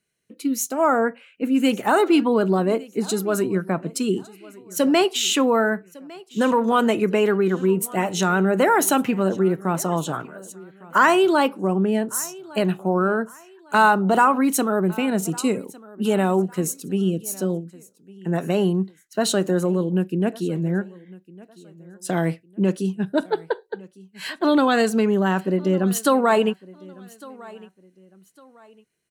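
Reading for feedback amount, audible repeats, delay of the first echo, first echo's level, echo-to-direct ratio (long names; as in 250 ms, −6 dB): 32%, 2, 1,155 ms, −22.0 dB, −21.5 dB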